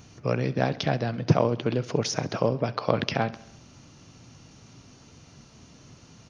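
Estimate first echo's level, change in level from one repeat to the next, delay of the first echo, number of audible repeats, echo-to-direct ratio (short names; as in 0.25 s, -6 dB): -19.0 dB, -4.5 dB, 67 ms, 4, -17.0 dB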